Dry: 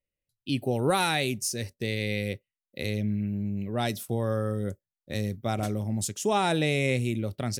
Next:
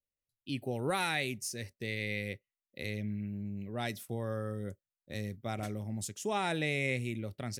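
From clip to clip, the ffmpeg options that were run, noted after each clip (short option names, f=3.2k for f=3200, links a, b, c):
-af "adynamicequalizer=threshold=0.00562:dfrequency=2000:dqfactor=2:tfrequency=2000:tqfactor=2:attack=5:release=100:ratio=0.375:range=3.5:mode=boostabove:tftype=bell,volume=-8.5dB"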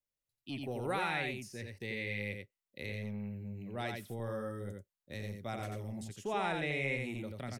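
-filter_complex "[0:a]aecho=1:1:87:0.596,acrossover=split=420|3300[a][b][c];[a]asoftclip=type=tanh:threshold=-35dB[d];[c]acompressor=threshold=-53dB:ratio=5[e];[d][b][e]amix=inputs=3:normalize=0,volume=-2dB"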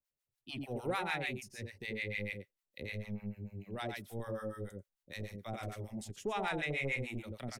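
-filter_complex "[0:a]acrossover=split=750[a][b];[a]aeval=exprs='val(0)*(1-1/2+1/2*cos(2*PI*6.7*n/s))':c=same[c];[b]aeval=exprs='val(0)*(1-1/2-1/2*cos(2*PI*6.7*n/s))':c=same[d];[c][d]amix=inputs=2:normalize=0,aeval=exprs='0.0531*(cos(1*acos(clip(val(0)/0.0531,-1,1)))-cos(1*PI/2))+0.00422*(cos(5*acos(clip(val(0)/0.0531,-1,1)))-cos(5*PI/2))+0.00188*(cos(7*acos(clip(val(0)/0.0531,-1,1)))-cos(7*PI/2))':c=same,asubboost=boost=2.5:cutoff=53,volume=2.5dB"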